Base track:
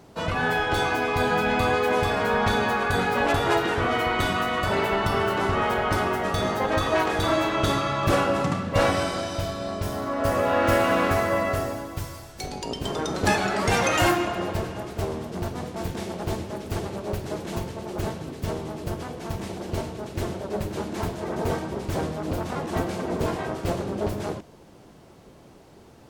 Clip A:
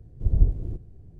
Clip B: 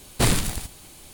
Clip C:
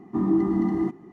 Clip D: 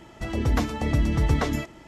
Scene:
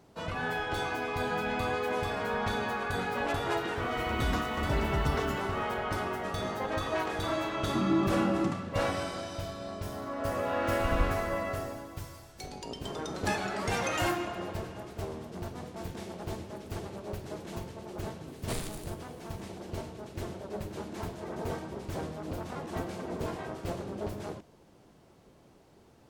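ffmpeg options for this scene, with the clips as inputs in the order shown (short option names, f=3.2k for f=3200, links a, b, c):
-filter_complex "[0:a]volume=-9dB[a];[4:a]acrusher=bits=7:mix=0:aa=0.000001,atrim=end=1.87,asetpts=PTS-STARTPTS,volume=-9dB,afade=t=in:d=0.004:c=hsin,afade=t=out:st=1.866:d=0.004:c=hsin,adelay=3760[b];[3:a]atrim=end=1.12,asetpts=PTS-STARTPTS,volume=-6dB,afade=t=in:d=0.004:c=hsin,afade=t=out:st=1.116:d=0.004:c=hsin,adelay=7600[c];[1:a]atrim=end=1.19,asetpts=PTS-STARTPTS,volume=-11dB,afade=t=in:d=0.004:c=hsin,afade=t=out:st=1.186:d=0.004:c=hsin,adelay=10590[d];[2:a]atrim=end=1.13,asetpts=PTS-STARTPTS,volume=-16.5dB,afade=t=in:d=0.004:c=hsin,afade=t=out:st=1.126:d=0.004:c=hsin,adelay=806148S[e];[a][b][c][d][e]amix=inputs=5:normalize=0"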